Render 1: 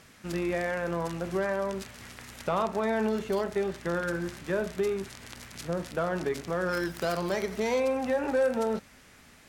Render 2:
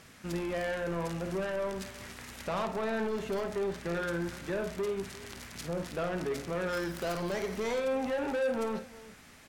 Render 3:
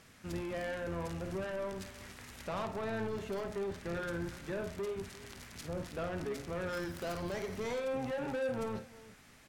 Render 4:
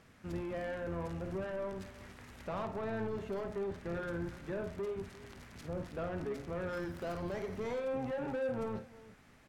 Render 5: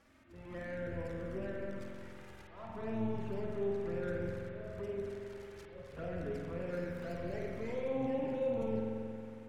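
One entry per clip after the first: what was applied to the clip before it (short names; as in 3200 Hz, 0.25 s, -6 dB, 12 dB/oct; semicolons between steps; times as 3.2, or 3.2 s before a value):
soft clip -28.5 dBFS, distortion -10 dB; on a send: tapped delay 53/348 ms -10.5/-18.5 dB
octaver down 1 oct, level -5 dB; gain -5 dB
high shelf 2700 Hz -10.5 dB
auto swell 0.31 s; envelope flanger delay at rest 3.8 ms, full sweep at -33.5 dBFS; spring tank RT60 2.7 s, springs 45 ms, chirp 70 ms, DRR -1 dB; gain -2 dB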